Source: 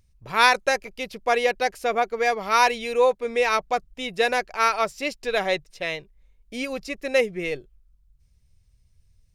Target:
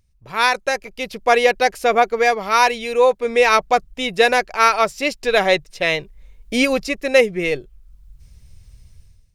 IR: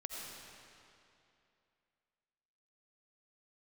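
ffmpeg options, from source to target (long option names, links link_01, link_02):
-af "dynaudnorm=framelen=180:gausssize=5:maxgain=17dB,volume=-1dB"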